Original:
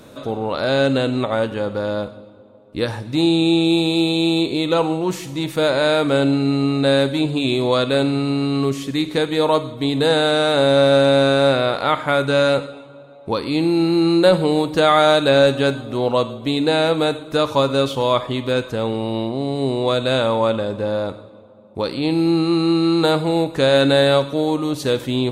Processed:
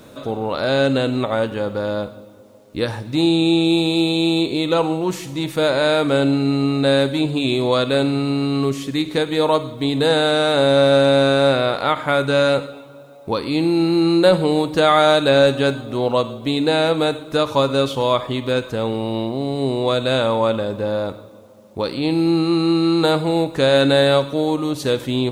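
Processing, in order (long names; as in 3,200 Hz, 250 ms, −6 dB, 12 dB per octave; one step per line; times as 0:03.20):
bit reduction 10 bits
every ending faded ahead of time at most 330 dB per second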